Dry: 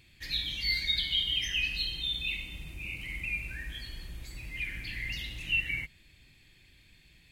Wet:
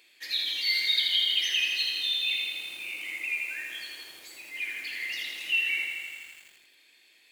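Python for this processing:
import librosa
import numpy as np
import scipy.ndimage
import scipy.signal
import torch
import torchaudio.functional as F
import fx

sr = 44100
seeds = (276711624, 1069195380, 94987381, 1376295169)

p1 = scipy.signal.sosfilt(scipy.signal.butter(4, 370.0, 'highpass', fs=sr, output='sos'), x)
p2 = fx.high_shelf(p1, sr, hz=4600.0, db=3.0)
p3 = p2 + fx.echo_feedback(p2, sr, ms=299, feedback_pct=29, wet_db=-23, dry=0)
p4 = fx.echo_crushed(p3, sr, ms=82, feedback_pct=80, bits=9, wet_db=-5)
y = p4 * 10.0 ** (1.5 / 20.0)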